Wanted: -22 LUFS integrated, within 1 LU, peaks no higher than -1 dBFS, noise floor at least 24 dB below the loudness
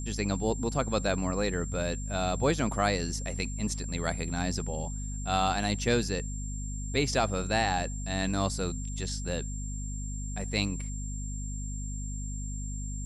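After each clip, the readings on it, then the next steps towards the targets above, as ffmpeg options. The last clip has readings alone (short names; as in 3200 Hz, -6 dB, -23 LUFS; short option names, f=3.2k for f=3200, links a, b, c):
hum 50 Hz; harmonics up to 250 Hz; hum level -33 dBFS; steady tone 7400 Hz; tone level -42 dBFS; loudness -31.5 LUFS; peak -13.5 dBFS; loudness target -22.0 LUFS
-> -af "bandreject=f=50:t=h:w=4,bandreject=f=100:t=h:w=4,bandreject=f=150:t=h:w=4,bandreject=f=200:t=h:w=4,bandreject=f=250:t=h:w=4"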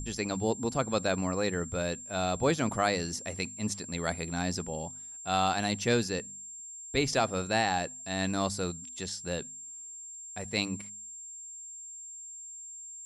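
hum none; steady tone 7400 Hz; tone level -42 dBFS
-> -af "bandreject=f=7.4k:w=30"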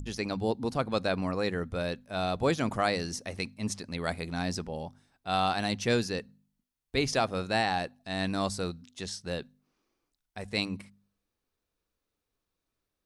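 steady tone none; loudness -31.5 LUFS; peak -14.0 dBFS; loudness target -22.0 LUFS
-> -af "volume=9.5dB"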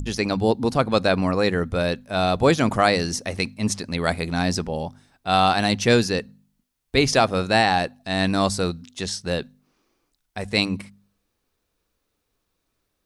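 loudness -22.0 LUFS; peak -4.5 dBFS; noise floor -76 dBFS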